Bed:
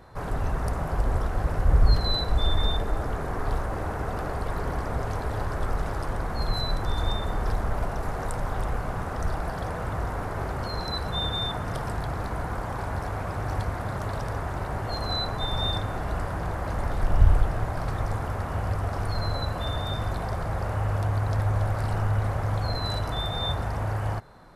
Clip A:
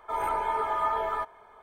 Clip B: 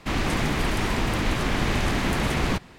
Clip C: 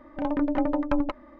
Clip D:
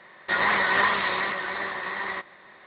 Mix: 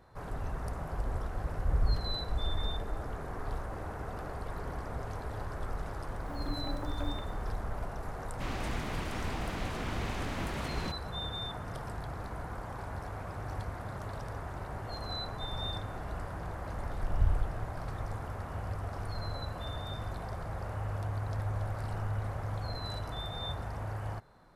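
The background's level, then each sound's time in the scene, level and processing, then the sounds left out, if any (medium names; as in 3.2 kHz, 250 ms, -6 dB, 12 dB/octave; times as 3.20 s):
bed -9.5 dB
6.09 s: add C -16.5 dB + bit crusher 8-bit
8.34 s: add B -13.5 dB
not used: A, D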